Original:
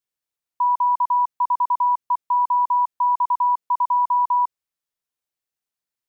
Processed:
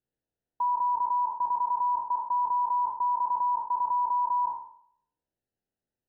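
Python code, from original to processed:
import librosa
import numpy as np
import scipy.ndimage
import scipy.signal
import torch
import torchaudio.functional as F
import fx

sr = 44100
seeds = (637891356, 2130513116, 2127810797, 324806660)

y = fx.spec_trails(x, sr, decay_s=0.63)
y = scipy.signal.lfilter(np.full(39, 1.0 / 39), 1.0, y)
y = y * 10.0 ** (9.0 / 20.0)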